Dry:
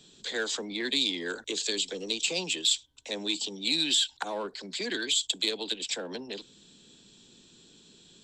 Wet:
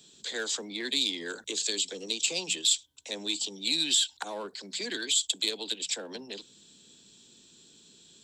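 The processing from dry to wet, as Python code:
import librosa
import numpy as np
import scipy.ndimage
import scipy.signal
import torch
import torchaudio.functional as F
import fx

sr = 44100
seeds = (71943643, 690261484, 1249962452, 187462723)

y = scipy.signal.sosfilt(scipy.signal.butter(2, 47.0, 'highpass', fs=sr, output='sos'), x)
y = fx.high_shelf(y, sr, hz=6000.0, db=11.0)
y = fx.hum_notches(y, sr, base_hz=60, count=3)
y = y * librosa.db_to_amplitude(-3.5)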